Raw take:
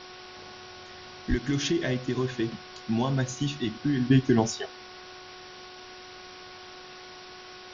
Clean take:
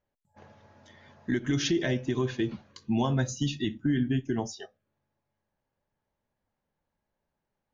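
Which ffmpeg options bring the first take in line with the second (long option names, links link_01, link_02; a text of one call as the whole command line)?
ffmpeg -i in.wav -filter_complex "[0:a]bandreject=frequency=366.9:width_type=h:width=4,bandreject=frequency=733.8:width_type=h:width=4,bandreject=frequency=1100.7:width_type=h:width=4,bandreject=frequency=1467.6:width_type=h:width=4,asplit=3[link_01][link_02][link_03];[link_01]afade=type=out:start_time=1.29:duration=0.02[link_04];[link_02]highpass=frequency=140:width=0.5412,highpass=frequency=140:width=1.3066,afade=type=in:start_time=1.29:duration=0.02,afade=type=out:start_time=1.41:duration=0.02[link_05];[link_03]afade=type=in:start_time=1.41:duration=0.02[link_06];[link_04][link_05][link_06]amix=inputs=3:normalize=0,afwtdn=0.0079,asetnsamples=nb_out_samples=441:pad=0,asendcmd='4.1 volume volume -8dB',volume=0dB" out.wav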